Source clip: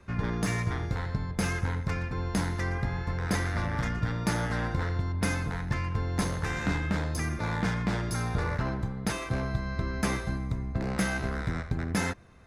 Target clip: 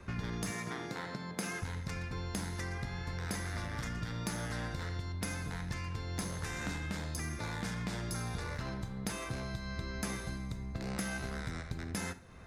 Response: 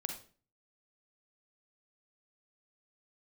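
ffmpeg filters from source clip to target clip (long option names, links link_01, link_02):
-filter_complex "[0:a]asettb=1/sr,asplit=3[link_01][link_02][link_03];[link_01]atrim=end=0.504[link_04];[link_02]atrim=start=0.5:end=1.62,asetpts=PTS-STARTPTS,afade=type=in:duration=0.004:curve=qsin,afade=type=out:start_time=1.116:duration=0.004:curve=qsin,highpass=frequency=170:width=0.5412,highpass=frequency=170:width=1.3066[link_05];[link_03]atrim=start=1.616[link_06];[link_04][link_05]acrossfade=duration=0.004:curve1=hsin:curve2=qsin[link_07];[link_07][link_06]acrossfade=duration=0.004:curve1=qsin:curve2=hsin,acrossover=split=2800|6900[link_08][link_09][link_10];[link_08]acompressor=threshold=-42dB:ratio=4[link_11];[link_09]acompressor=threshold=-53dB:ratio=4[link_12];[link_10]acompressor=threshold=-48dB:ratio=4[link_13];[link_11][link_12][link_13]amix=inputs=3:normalize=0,asplit=2[link_14][link_15];[1:a]atrim=start_sample=2205[link_16];[link_15][link_16]afir=irnorm=-1:irlink=0,volume=-5.5dB[link_17];[link_14][link_17]amix=inputs=2:normalize=0"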